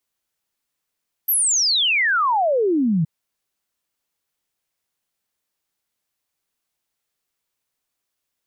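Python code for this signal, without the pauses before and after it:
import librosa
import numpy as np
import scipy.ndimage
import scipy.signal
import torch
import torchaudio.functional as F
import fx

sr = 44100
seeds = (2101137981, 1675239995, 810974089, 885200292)

y = fx.ess(sr, length_s=1.77, from_hz=13000.0, to_hz=150.0, level_db=-15.5)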